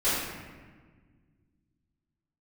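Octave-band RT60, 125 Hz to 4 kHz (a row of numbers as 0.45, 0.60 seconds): 2.9, 2.5, 1.6, 1.4, 1.4, 0.90 seconds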